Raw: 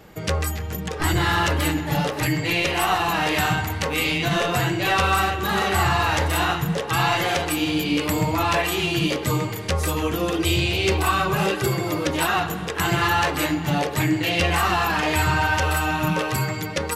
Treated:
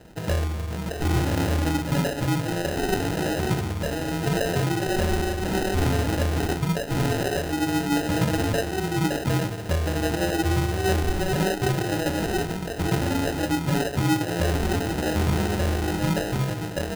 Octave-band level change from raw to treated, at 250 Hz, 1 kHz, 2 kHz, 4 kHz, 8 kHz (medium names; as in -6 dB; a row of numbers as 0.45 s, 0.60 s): 0.0 dB, -7.5 dB, -8.0 dB, -7.5 dB, -4.0 dB